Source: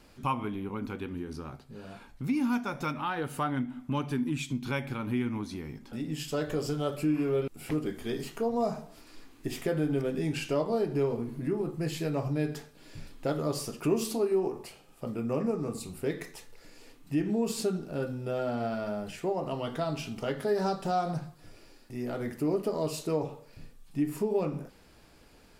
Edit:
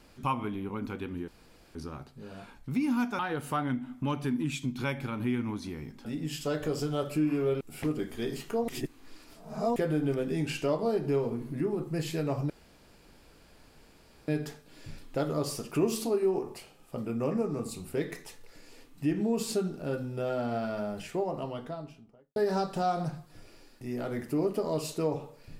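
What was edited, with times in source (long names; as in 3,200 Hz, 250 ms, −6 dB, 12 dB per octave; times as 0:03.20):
0:01.28: splice in room tone 0.47 s
0:02.72–0:03.06: remove
0:08.55–0:09.63: reverse
0:12.37: splice in room tone 1.78 s
0:19.15–0:20.45: fade out and dull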